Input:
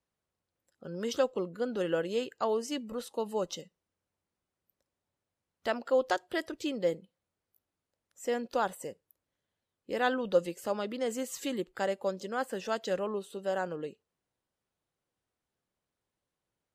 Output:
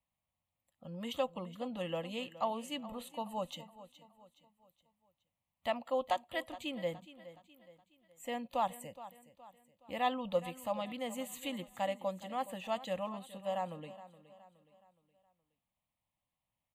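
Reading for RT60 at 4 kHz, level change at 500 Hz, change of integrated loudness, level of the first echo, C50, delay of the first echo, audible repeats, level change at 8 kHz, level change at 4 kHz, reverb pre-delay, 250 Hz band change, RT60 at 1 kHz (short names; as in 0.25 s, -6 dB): none, -7.0 dB, -5.5 dB, -16.0 dB, none, 0.419 s, 3, -7.5 dB, -2.0 dB, none, -5.5 dB, none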